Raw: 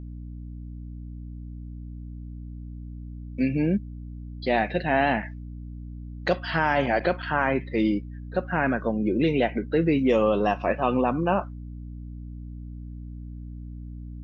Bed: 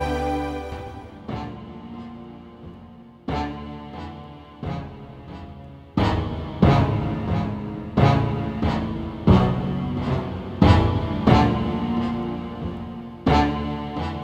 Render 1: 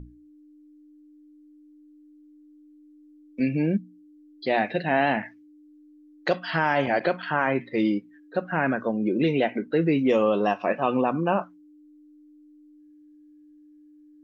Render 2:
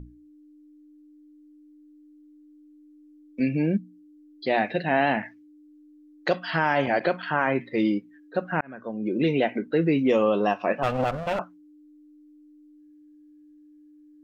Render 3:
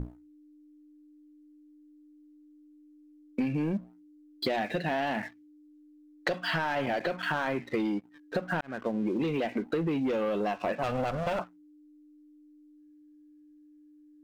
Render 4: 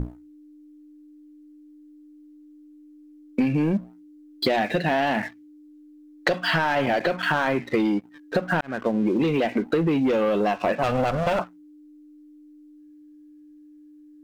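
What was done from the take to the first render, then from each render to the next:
hum notches 60/120/180/240 Hz
8.61–9.27 s: fade in; 10.83–11.39 s: comb filter that takes the minimum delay 1.5 ms
waveshaping leveller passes 2; compression 12:1, threshold -27 dBFS, peak gain reduction 13.5 dB
trim +7.5 dB

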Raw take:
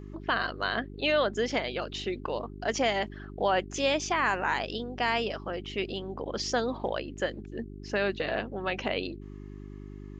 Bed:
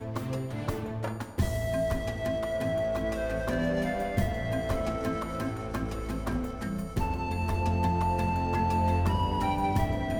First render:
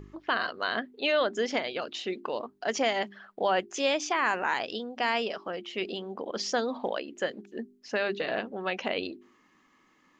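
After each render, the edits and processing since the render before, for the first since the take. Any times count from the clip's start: de-hum 50 Hz, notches 8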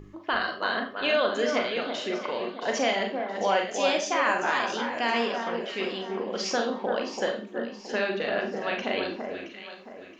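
on a send: echo whose repeats swap between lows and highs 336 ms, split 1.7 kHz, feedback 58%, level -5 dB; on the sum: Schroeder reverb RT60 0.33 s, combs from 30 ms, DRR 3 dB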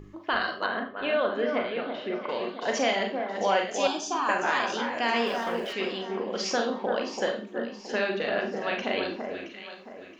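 0.66–2.29 s: distance through air 370 m; 3.87–4.29 s: static phaser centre 550 Hz, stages 6; 5.26–5.73 s: jump at every zero crossing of -43.5 dBFS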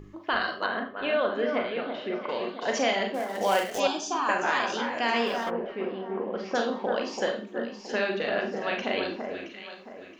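3.14–3.80 s: dead-time distortion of 0.077 ms; 5.49–6.54 s: low-pass 1.1 kHz -> 1.8 kHz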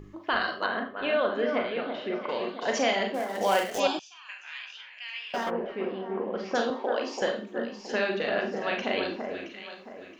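3.99–5.34 s: ladder band-pass 2.9 kHz, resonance 55%; 6.70–7.22 s: elliptic high-pass 250 Hz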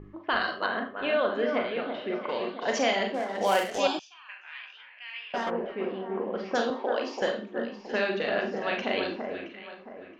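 level-controlled noise filter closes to 1.8 kHz, open at -21.5 dBFS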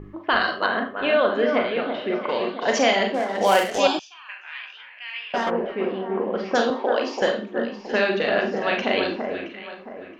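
trim +6.5 dB

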